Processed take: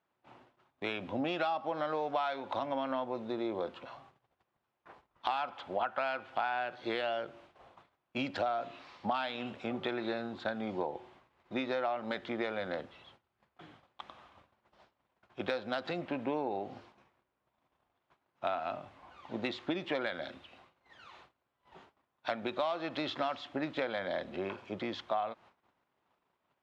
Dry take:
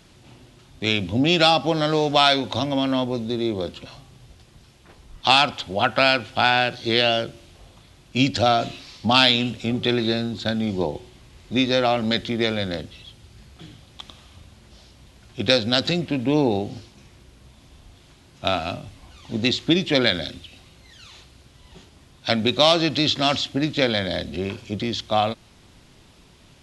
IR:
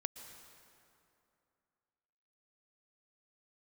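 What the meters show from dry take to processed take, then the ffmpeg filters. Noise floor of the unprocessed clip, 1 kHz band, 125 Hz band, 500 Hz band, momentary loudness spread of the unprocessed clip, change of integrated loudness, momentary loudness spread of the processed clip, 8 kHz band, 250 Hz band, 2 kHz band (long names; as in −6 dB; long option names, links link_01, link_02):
−52 dBFS, −11.5 dB, −22.0 dB, −12.5 dB, 13 LU, −15.5 dB, 13 LU, below −25 dB, −16.0 dB, −15.0 dB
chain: -filter_complex "[0:a]bandpass=frequency=1000:width_type=q:width=1.2:csg=0,acompressor=threshold=-31dB:ratio=6,aeval=exprs='0.2*(cos(1*acos(clip(val(0)/0.2,-1,1)))-cos(1*PI/2))+0.00708*(cos(5*acos(clip(val(0)/0.2,-1,1)))-cos(5*PI/2))':channel_layout=same,agate=range=-21dB:threshold=-57dB:ratio=16:detection=peak,asplit=2[link_01][link_02];[1:a]atrim=start_sample=2205,atrim=end_sample=3969,lowpass=3300[link_03];[link_02][link_03]afir=irnorm=-1:irlink=0,volume=-1dB[link_04];[link_01][link_04]amix=inputs=2:normalize=0,volume=-5dB"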